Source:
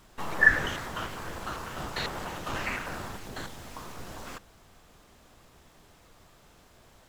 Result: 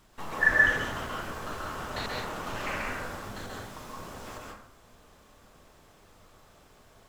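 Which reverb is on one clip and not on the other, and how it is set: plate-style reverb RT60 0.64 s, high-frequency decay 0.5×, pre-delay 0.12 s, DRR -2.5 dB; gain -4 dB

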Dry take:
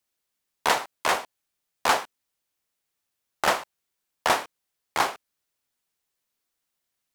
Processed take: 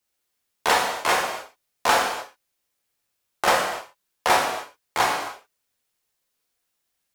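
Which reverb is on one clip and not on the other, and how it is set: non-linear reverb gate 0.32 s falling, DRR -2 dB

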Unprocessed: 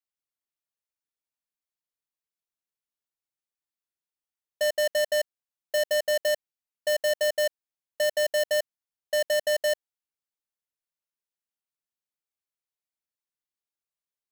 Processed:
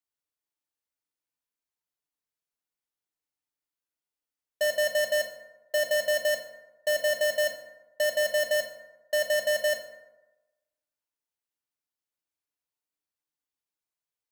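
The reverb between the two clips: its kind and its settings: FDN reverb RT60 1.1 s, low-frequency decay 0.85×, high-frequency decay 0.45×, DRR 2 dB; gain -1.5 dB

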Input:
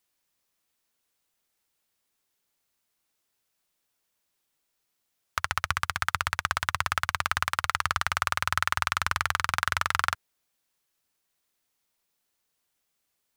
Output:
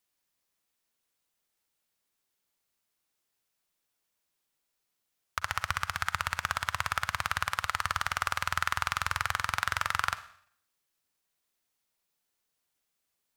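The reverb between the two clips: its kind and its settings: Schroeder reverb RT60 0.62 s, DRR 13 dB; gain -3.5 dB

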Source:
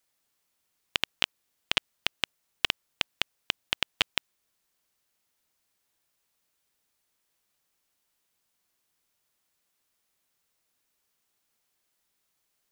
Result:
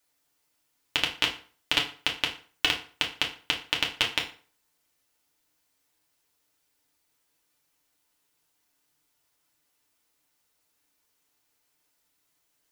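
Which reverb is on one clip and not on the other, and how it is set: FDN reverb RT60 0.42 s, low-frequency decay 0.95×, high-frequency decay 0.8×, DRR -1 dB

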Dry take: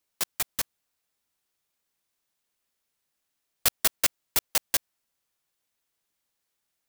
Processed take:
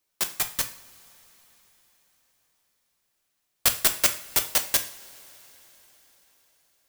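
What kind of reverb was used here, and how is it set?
two-slope reverb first 0.41 s, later 4.7 s, from -22 dB, DRR 6 dB; gain +2 dB

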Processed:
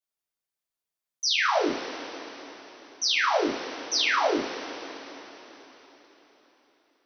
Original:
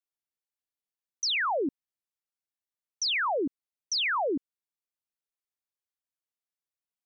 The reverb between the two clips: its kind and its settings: two-slope reverb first 0.36 s, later 4.2 s, from -18 dB, DRR -8 dB; gain -4.5 dB

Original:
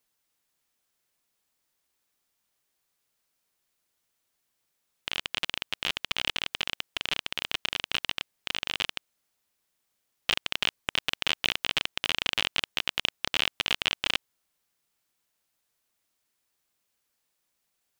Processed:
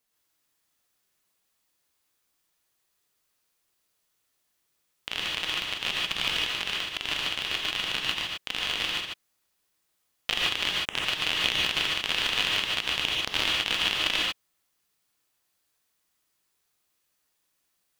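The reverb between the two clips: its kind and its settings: non-linear reverb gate 0.17 s rising, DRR -3 dB; gain -2 dB

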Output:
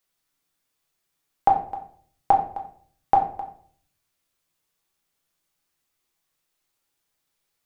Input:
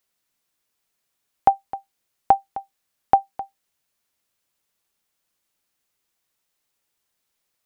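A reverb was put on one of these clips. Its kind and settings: shoebox room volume 62 m³, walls mixed, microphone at 0.68 m; gain -3 dB

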